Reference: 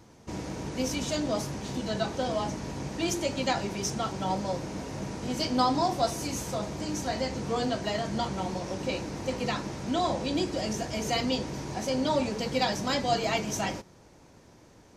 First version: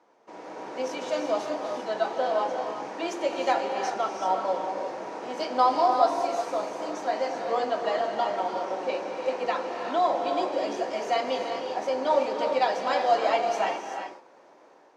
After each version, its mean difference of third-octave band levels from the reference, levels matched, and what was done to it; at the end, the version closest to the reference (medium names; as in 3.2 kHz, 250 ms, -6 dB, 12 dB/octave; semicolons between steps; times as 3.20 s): 9.5 dB: Bessel high-pass 530 Hz, order 2; level rider gain up to 7 dB; band-pass filter 680 Hz, Q 0.75; gated-style reverb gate 410 ms rising, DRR 4 dB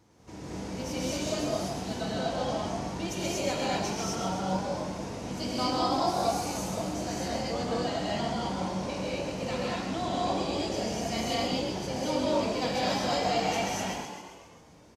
4.5 dB: bass shelf 60 Hz -5.5 dB; frequency-shifting echo 132 ms, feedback 57%, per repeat +46 Hz, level -6 dB; gated-style reverb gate 270 ms rising, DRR -5.5 dB; trim -8.5 dB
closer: second